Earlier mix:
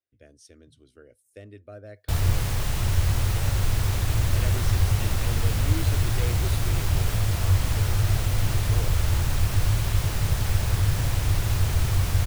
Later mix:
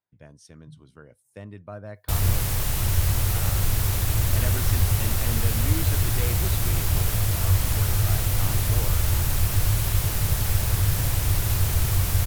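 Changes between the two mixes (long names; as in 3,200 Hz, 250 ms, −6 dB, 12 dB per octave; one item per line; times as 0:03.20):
speech: remove phaser with its sweep stopped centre 400 Hz, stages 4
background: add parametric band 14,000 Hz +11 dB 1.1 octaves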